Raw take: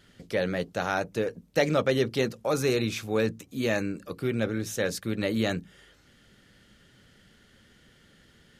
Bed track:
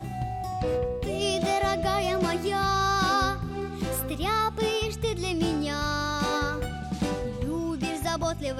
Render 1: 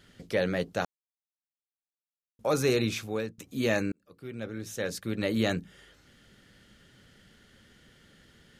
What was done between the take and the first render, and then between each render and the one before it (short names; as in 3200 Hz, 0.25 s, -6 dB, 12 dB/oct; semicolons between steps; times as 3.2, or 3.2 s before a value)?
0.85–2.39 mute; 2.93–3.38 fade out, to -21 dB; 3.92–5.45 fade in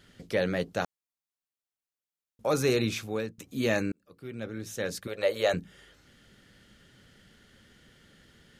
5.07–5.54 resonant low shelf 370 Hz -12 dB, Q 3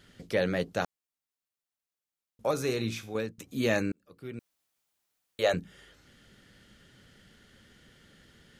2.51–3.15 resonator 57 Hz, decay 0.37 s; 4.39–5.39 room tone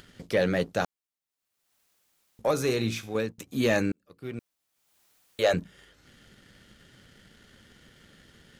upward compressor, threshold -49 dBFS; sample leveller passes 1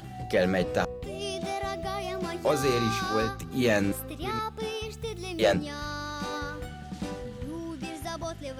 add bed track -7 dB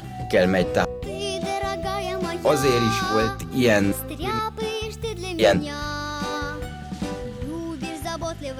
gain +6 dB